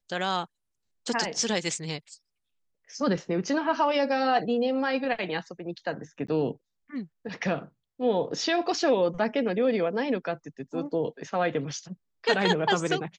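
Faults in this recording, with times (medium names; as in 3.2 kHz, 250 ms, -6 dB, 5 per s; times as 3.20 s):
6.27–6.28 s: dropout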